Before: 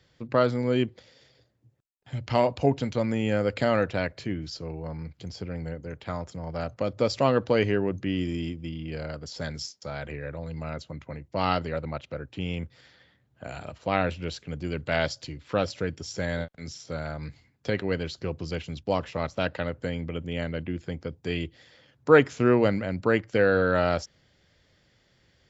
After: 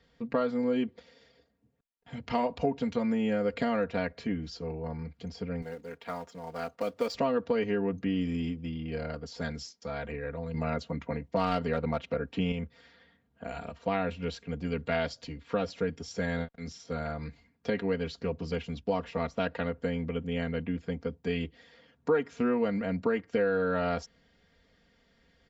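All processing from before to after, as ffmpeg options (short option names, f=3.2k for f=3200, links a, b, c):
-filter_complex "[0:a]asettb=1/sr,asplit=3[a][b][c];[a]atrim=end=5.624[d];[b]atrim=start=5.62:end=7.15,asetpts=PTS-STARTPTS,afade=t=in:d=0.004:c=qsin,afade=t=out:st=1.526:d=0.004:c=qsin,highpass=f=470:p=1,acrusher=bits=4:mode=log:mix=0:aa=0.000001[e];[c]atrim=start=7.146[f];[d][e]acrossfade=d=0.004:c1=hsin:c2=qsin[g];[g][f]acrossfade=d=0.004:c1=qsin:c2=hsin,asettb=1/sr,asplit=3[h][i][j];[h]atrim=end=10.544[k];[i]atrim=start=10.54:end=12.52,asetpts=PTS-STARTPTS,afade=t=in:d=0.004:c=qsin,afade=t=out:st=1.976:d=0.004:c=qsin,highpass=75,acontrast=39,aeval=exprs='clip(val(0),-1,0.133)':c=same[l];[j]atrim=start=12.516[m];[k][l]acrossfade=d=0.004:c1=hsin:c2=qsin[n];[n][m]acrossfade=d=0.004:c1=qsin:c2=hsin,highshelf=f=4.2k:g=-10.5,aecho=1:1:4.3:0.84,acompressor=threshold=-23dB:ratio=4,volume=-2dB"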